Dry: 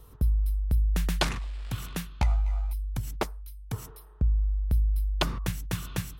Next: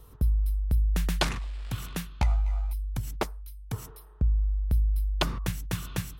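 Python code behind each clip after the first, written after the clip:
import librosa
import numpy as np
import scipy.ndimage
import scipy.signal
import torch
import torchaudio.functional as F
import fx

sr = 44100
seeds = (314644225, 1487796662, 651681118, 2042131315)

y = x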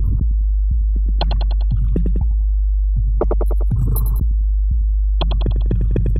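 y = fx.envelope_sharpen(x, sr, power=3.0)
y = fx.echo_feedback(y, sr, ms=99, feedback_pct=48, wet_db=-12.5)
y = fx.env_flatten(y, sr, amount_pct=100)
y = y * librosa.db_to_amplitude(5.0)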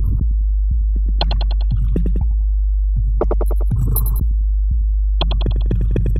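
y = fx.high_shelf(x, sr, hz=2300.0, db=6.5)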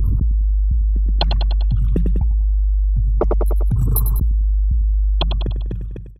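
y = fx.fade_out_tail(x, sr, length_s=1.1)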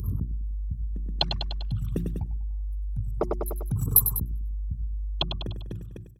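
y = scipy.signal.sosfilt(scipy.signal.butter(2, 82.0, 'highpass', fs=sr, output='sos'), x)
y = fx.bass_treble(y, sr, bass_db=2, treble_db=13)
y = fx.hum_notches(y, sr, base_hz=60, count=6)
y = y * librosa.db_to_amplitude(-7.5)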